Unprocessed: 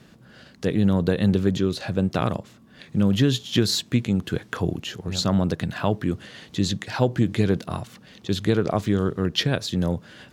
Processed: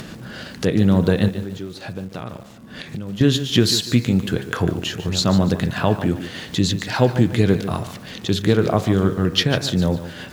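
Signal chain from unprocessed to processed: in parallel at +0.5 dB: upward compressor, threshold -21 dBFS; on the sum: de-hum 67.8 Hz, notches 39; 1.28–3.21 compressor 4:1, threshold -28 dBFS, peak gain reduction 15.5 dB; lo-fi delay 0.146 s, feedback 35%, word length 6-bit, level -12 dB; gain -1.5 dB

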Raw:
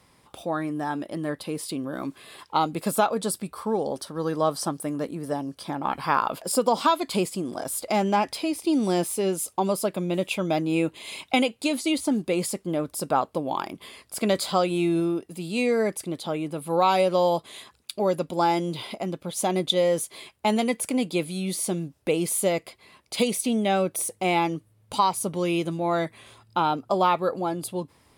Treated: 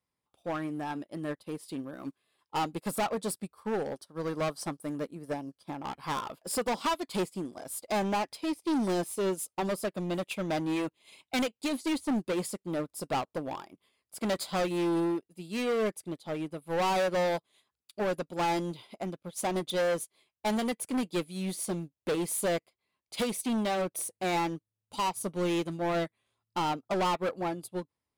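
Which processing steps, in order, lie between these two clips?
hard clip -25 dBFS, distortion -7 dB; upward expander 2.5:1, over -45 dBFS

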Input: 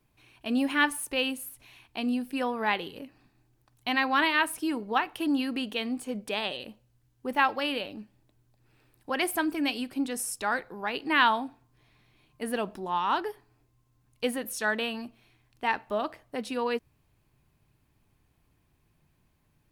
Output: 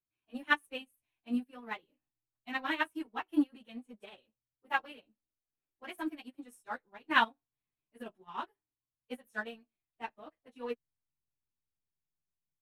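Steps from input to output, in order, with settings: bell 4800 Hz -12 dB 0.24 oct; plain phase-vocoder stretch 0.64×; vibrato 0.69 Hz 20 cents; in parallel at -10 dB: backlash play -31.5 dBFS; on the sum: doubler 13 ms -9 dB; upward expander 2.5:1, over -40 dBFS

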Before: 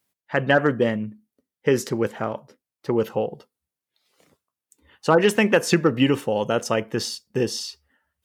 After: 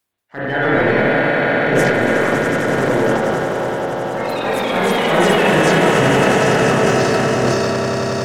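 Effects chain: bin magnitudes rounded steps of 30 dB; swelling echo 92 ms, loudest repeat 8, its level -8 dB; sample leveller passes 1; spring tank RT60 1 s, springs 31/51 ms, chirp 35 ms, DRR -3.5 dB; transient shaper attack -8 dB, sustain +11 dB; reverse; upward compressor, threshold -25 dBFS; reverse; echoes that change speed 0.184 s, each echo +2 st, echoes 3; gain -6 dB

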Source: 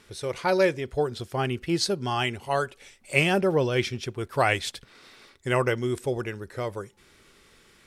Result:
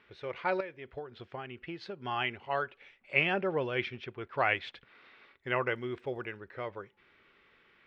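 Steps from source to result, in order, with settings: LPF 2700 Hz 24 dB/oct; tilt +2.5 dB/oct; 0.6–2.05 compressor 10:1, threshold -32 dBFS, peak gain reduction 14.5 dB; 5.47–6.35 crackle 81/s -56 dBFS; gain -5.5 dB

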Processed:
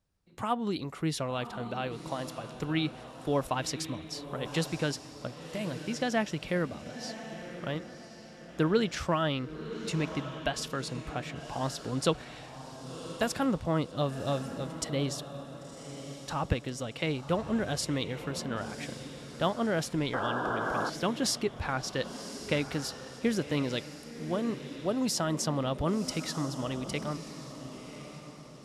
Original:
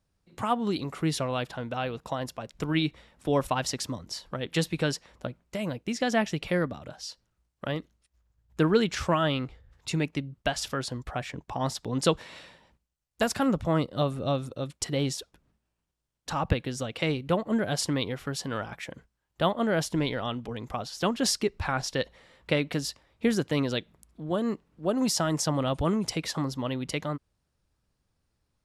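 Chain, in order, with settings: diffused feedback echo 1.07 s, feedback 41%, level -10.5 dB; painted sound noise, 20.13–20.9, 260–1700 Hz -29 dBFS; gain -3.5 dB

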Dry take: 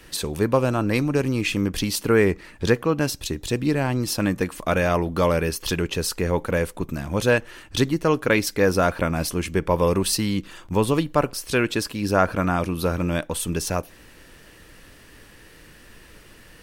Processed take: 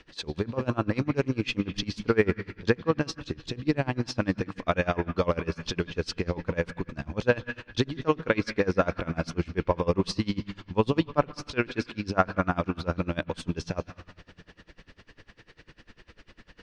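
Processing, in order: LPF 5300 Hz 24 dB/oct; on a send at -8.5 dB: bell 510 Hz -11 dB 1.7 oct + reverb, pre-delay 0.138 s; on the sum: dB-linear tremolo 10 Hz, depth 25 dB

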